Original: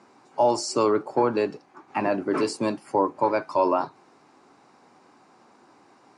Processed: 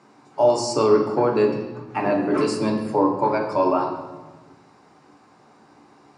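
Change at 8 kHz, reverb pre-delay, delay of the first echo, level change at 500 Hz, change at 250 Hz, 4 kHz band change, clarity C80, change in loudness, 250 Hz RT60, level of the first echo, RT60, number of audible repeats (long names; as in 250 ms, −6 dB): +1.0 dB, 7 ms, no echo audible, +4.5 dB, +5.0 dB, +2.0 dB, 8.0 dB, +3.5 dB, 1.8 s, no echo audible, 1.2 s, no echo audible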